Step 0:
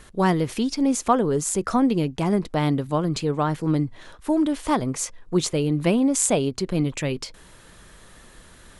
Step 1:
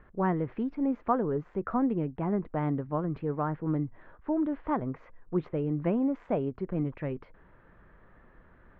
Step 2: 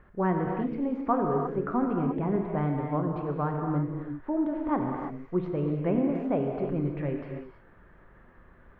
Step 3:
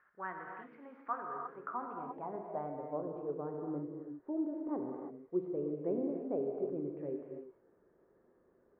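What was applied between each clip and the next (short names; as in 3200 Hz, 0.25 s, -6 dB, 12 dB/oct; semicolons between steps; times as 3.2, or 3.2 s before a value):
inverse Chebyshev low-pass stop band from 9300 Hz, stop band 80 dB; gain -7.5 dB
non-linear reverb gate 0.36 s flat, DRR 1.5 dB
band-pass sweep 1500 Hz -> 410 Hz, 1.26–3.41; gain -3.5 dB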